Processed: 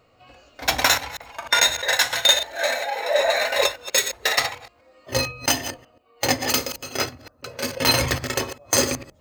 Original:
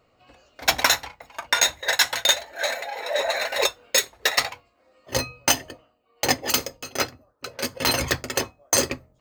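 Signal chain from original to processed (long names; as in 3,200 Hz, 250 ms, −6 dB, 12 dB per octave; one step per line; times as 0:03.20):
delay that plays each chunk backwards 130 ms, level −12.5 dB
harmonic and percussive parts rebalanced percussive −9 dB
level +7 dB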